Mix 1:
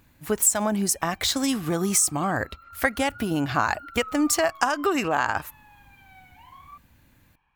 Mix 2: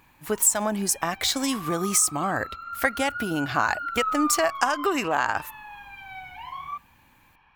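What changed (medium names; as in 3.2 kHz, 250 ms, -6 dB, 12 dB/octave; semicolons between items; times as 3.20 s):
background +12.0 dB; master: add bass shelf 220 Hz -6 dB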